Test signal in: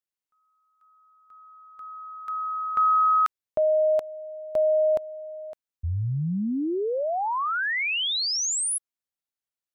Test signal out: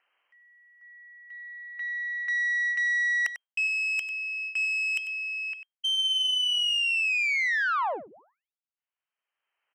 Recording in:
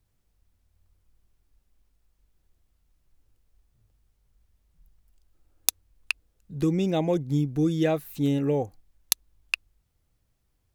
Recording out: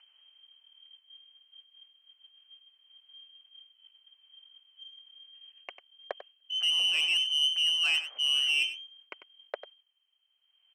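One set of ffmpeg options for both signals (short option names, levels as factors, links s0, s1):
-af "areverse,acompressor=threshold=0.0282:ratio=12:attack=15:release=153:knee=6:detection=peak,areverse,lowpass=f=2700:t=q:w=0.5098,lowpass=f=2700:t=q:w=0.6013,lowpass=f=2700:t=q:w=0.9,lowpass=f=2700:t=q:w=2.563,afreqshift=-3200,agate=range=0.224:threshold=0.00141:ratio=3:release=186:detection=peak,aeval=exprs='(tanh(25.1*val(0)+0.25)-tanh(0.25))/25.1':c=same,highpass=570,acompressor=mode=upward:threshold=0.00251:ratio=2.5:attack=0.27:release=942:knee=2.83:detection=peak,aecho=1:1:96:0.251,volume=2.51"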